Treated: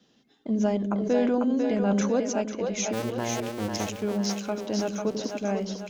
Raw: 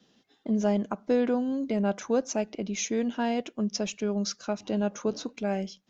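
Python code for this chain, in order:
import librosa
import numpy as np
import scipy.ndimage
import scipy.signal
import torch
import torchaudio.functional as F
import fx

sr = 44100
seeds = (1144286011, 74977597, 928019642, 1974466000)

y = fx.cycle_switch(x, sr, every=2, mode='muted', at=(2.92, 4.01), fade=0.02)
y = fx.echo_split(y, sr, split_hz=400.0, low_ms=94, high_ms=495, feedback_pct=52, wet_db=-4)
y = fx.sustainer(y, sr, db_per_s=22.0, at=(0.9, 2.2))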